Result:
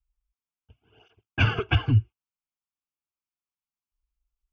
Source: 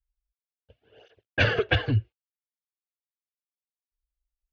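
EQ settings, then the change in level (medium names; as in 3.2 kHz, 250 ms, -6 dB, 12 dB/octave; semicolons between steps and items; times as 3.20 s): treble shelf 3.3 kHz -10.5 dB; static phaser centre 2.7 kHz, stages 8; +4.5 dB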